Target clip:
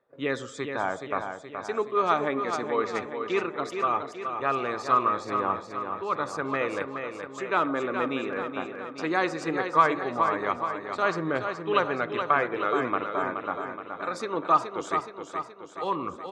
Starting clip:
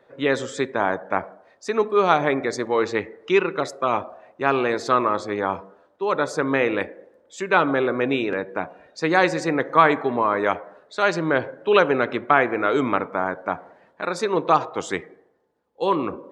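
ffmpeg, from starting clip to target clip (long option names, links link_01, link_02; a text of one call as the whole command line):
ffmpeg -i in.wav -filter_complex "[0:a]agate=range=-11dB:threshold=-44dB:ratio=16:detection=peak,equalizer=frequency=1200:width=8:gain=8.5,aphaser=in_gain=1:out_gain=1:delay=4.2:decay=0.28:speed=0.18:type=triangular,asplit=2[link_01][link_02];[link_02]aecho=0:1:423|846|1269|1692|2115|2538|2961:0.447|0.25|0.14|0.0784|0.0439|0.0246|0.0138[link_03];[link_01][link_03]amix=inputs=2:normalize=0,volume=-8.5dB" out.wav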